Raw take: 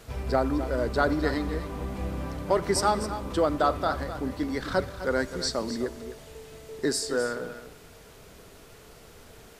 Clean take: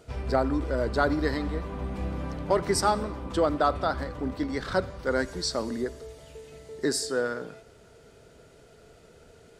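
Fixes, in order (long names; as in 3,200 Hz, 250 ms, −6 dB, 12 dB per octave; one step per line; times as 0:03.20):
noise reduction from a noise print 6 dB
echo removal 257 ms −12 dB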